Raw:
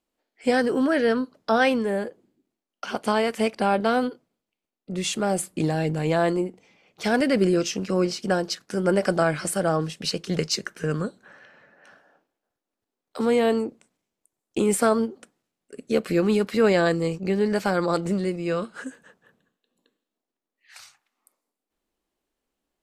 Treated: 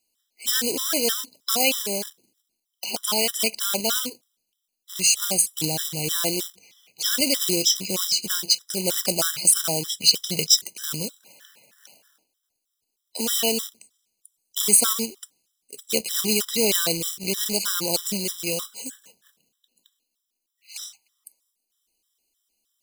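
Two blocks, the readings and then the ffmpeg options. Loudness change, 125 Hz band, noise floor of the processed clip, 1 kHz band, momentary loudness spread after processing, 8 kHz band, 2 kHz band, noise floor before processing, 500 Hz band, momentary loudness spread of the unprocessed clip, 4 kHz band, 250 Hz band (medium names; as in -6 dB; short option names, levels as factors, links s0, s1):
+2.5 dB, -7.5 dB, -80 dBFS, -8.5 dB, 14 LU, +14.5 dB, -3.5 dB, under -85 dBFS, -7.5 dB, 10 LU, +11.0 dB, -8.0 dB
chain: -af "acrusher=bits=3:mode=log:mix=0:aa=0.000001,aexciter=amount=6:drive=7.5:freq=2600,afftfilt=real='re*gt(sin(2*PI*3.2*pts/sr)*(1-2*mod(floor(b*sr/1024/1000),2)),0)':imag='im*gt(sin(2*PI*3.2*pts/sr)*(1-2*mod(floor(b*sr/1024/1000),2)),0)':win_size=1024:overlap=0.75,volume=0.596"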